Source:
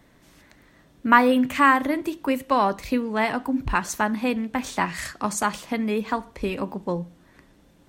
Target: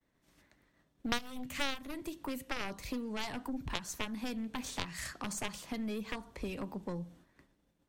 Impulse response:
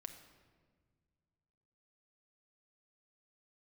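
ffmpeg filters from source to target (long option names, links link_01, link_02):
-filter_complex "[0:a]aeval=exprs='0.841*(cos(1*acos(clip(val(0)/0.841,-1,1)))-cos(1*PI/2))+0.266*(cos(3*acos(clip(val(0)/0.841,-1,1)))-cos(3*PI/2))+0.0422*(cos(4*acos(clip(val(0)/0.841,-1,1)))-cos(4*PI/2))+0.0376*(cos(7*acos(clip(val(0)/0.841,-1,1)))-cos(7*PI/2))':channel_layout=same,agate=range=-33dB:threshold=-58dB:ratio=3:detection=peak,acrossover=split=180|3700[link_01][link_02][link_03];[link_01]acompressor=threshold=-46dB:ratio=4[link_04];[link_02]acompressor=threshold=-46dB:ratio=4[link_05];[link_03]acompressor=threshold=-46dB:ratio=4[link_06];[link_04][link_05][link_06]amix=inputs=3:normalize=0,volume=6dB"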